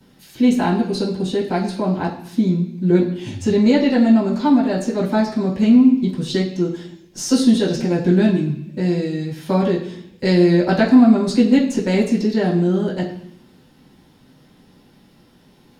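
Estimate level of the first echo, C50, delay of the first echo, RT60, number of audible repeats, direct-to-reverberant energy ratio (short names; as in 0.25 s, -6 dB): none, 7.5 dB, none, 0.70 s, none, -9.5 dB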